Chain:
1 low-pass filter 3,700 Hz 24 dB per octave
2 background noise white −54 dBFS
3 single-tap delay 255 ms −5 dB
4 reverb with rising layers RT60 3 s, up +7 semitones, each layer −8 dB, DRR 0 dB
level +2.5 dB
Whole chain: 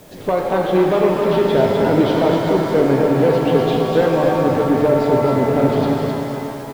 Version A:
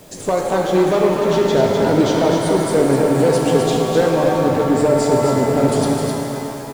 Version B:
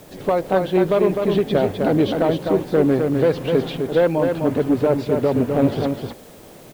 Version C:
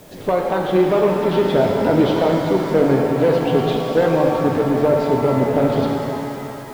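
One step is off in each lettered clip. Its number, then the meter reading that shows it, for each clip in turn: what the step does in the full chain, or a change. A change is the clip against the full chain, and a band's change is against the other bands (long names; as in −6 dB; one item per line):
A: 1, 4 kHz band +3.0 dB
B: 4, change in momentary loudness spread −1 LU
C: 3, change in integrated loudness −1.0 LU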